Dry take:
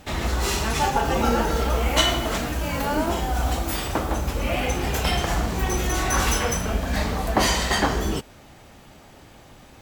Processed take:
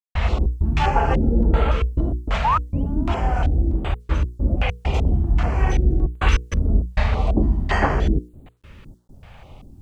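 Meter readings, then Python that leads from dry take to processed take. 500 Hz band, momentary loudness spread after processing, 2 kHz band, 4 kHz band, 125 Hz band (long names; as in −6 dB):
−2.0 dB, 5 LU, −2.5 dB, −10.0 dB, +6.5 dB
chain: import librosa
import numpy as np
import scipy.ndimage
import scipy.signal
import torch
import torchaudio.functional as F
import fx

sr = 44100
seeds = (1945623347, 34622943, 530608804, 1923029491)

y = fx.spec_paint(x, sr, seeds[0], shape='rise', start_s=2.44, length_s=0.39, low_hz=820.0, high_hz=3300.0, level_db=-20.0)
y = fx.low_shelf(y, sr, hz=110.0, db=9.5)
y = fx.echo_multitap(y, sr, ms=(53, 80), db=(-13.5, -12.5))
y = fx.step_gate(y, sr, bpm=99, pattern='.xx.xxxxxxxx.x', floor_db=-60.0, edge_ms=4.5)
y = fx.hum_notches(y, sr, base_hz=60, count=8)
y = fx.filter_lfo_lowpass(y, sr, shape='square', hz=1.3, low_hz=290.0, high_hz=2400.0, q=2.0)
y = fx.quant_dither(y, sr, seeds[1], bits=12, dither='none')
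y = fx.graphic_eq(y, sr, hz=(250, 2000, 8000), db=(-5, -6, 4))
y = fx.filter_held_notch(y, sr, hz=3.5, low_hz=330.0, high_hz=5500.0)
y = y * librosa.db_to_amplitude(2.5)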